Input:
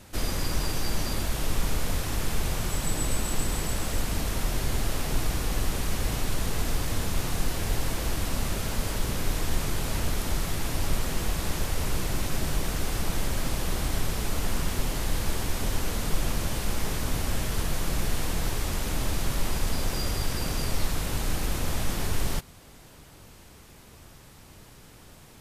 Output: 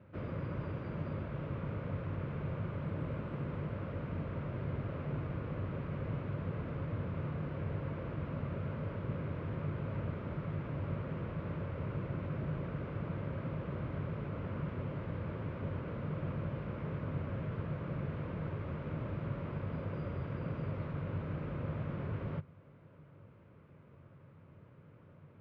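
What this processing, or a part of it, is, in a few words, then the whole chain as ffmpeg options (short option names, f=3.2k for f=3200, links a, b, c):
bass cabinet: -af "highpass=f=66:w=0.5412,highpass=f=66:w=1.3066,equalizer=f=68:t=q:w=4:g=-9,equalizer=f=98:t=q:w=4:g=7,equalizer=f=150:t=q:w=4:g=9,equalizer=f=550:t=q:w=4:g=6,equalizer=f=780:t=q:w=4:g=-10,equalizer=f=1.8k:t=q:w=4:g=-7,lowpass=f=2k:w=0.5412,lowpass=f=2k:w=1.3066,volume=-8dB"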